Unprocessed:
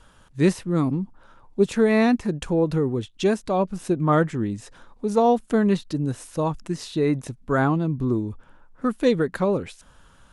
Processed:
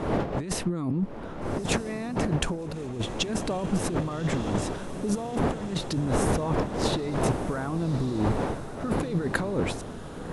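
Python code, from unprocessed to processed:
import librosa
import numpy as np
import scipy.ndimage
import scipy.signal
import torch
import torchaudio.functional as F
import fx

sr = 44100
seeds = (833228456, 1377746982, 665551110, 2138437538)

p1 = fx.dmg_wind(x, sr, seeds[0], corner_hz=530.0, level_db=-29.0)
p2 = fx.over_compress(p1, sr, threshold_db=-28.0, ratio=-1.0)
p3 = p2 + fx.echo_diffused(p2, sr, ms=1225, feedback_pct=54, wet_db=-12.5, dry=0)
y = fx.level_steps(p3, sr, step_db=17, at=(2.54, 2.99), fade=0.02)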